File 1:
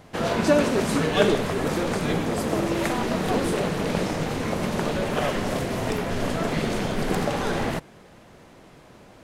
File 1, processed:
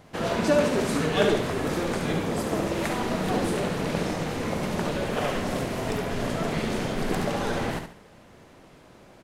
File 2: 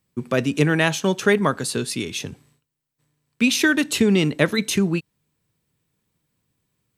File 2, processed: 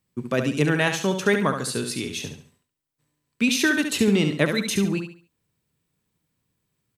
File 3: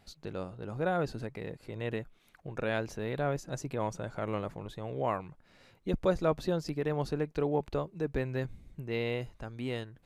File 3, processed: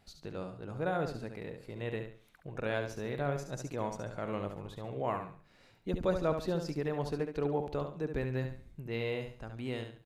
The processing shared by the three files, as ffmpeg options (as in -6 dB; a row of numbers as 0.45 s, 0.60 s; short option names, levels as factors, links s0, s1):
-af "aecho=1:1:70|140|210|280:0.447|0.143|0.0457|0.0146,volume=0.708"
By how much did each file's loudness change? -2.0 LU, -2.0 LU, -2.0 LU